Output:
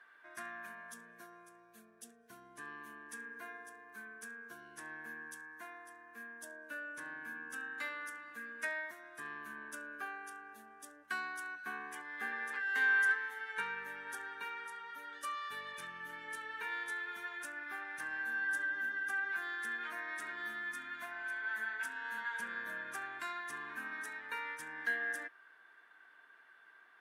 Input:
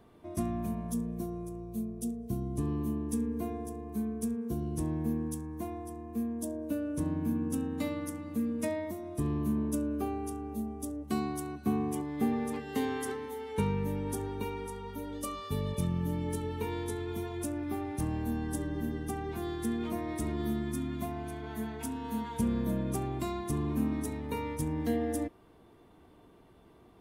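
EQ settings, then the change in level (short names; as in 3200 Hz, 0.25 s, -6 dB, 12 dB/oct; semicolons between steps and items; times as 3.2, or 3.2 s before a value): band-pass 1600 Hz, Q 12; tilt +3.5 dB/oct; +17.5 dB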